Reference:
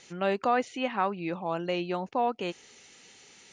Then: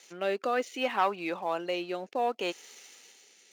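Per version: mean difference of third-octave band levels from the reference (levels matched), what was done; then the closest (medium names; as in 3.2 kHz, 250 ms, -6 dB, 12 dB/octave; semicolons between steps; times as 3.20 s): 5.5 dB: rotary cabinet horn 0.65 Hz; waveshaping leveller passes 1; high-pass 380 Hz 12 dB/octave; treble shelf 6 kHz +7 dB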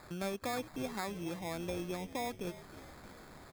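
14.0 dB: peaking EQ 1.1 kHz -6.5 dB 2.8 oct; compression 2:1, threshold -44 dBFS, peak gain reduction 10 dB; sample-and-hold 15×; on a send: frequency-shifting echo 315 ms, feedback 59%, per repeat -83 Hz, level -15 dB; on the sum: trim +2.5 dB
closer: first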